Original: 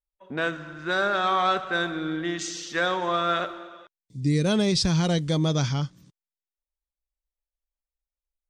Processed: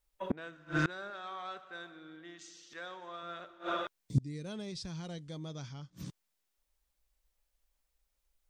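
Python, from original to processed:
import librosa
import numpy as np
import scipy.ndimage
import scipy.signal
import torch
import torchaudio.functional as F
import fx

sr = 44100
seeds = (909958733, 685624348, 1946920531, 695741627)

y = fx.low_shelf(x, sr, hz=220.0, db=-9.0, at=(1.1, 3.23))
y = fx.gate_flip(y, sr, shuts_db=-29.0, range_db=-31)
y = y * librosa.db_to_amplitude(11.5)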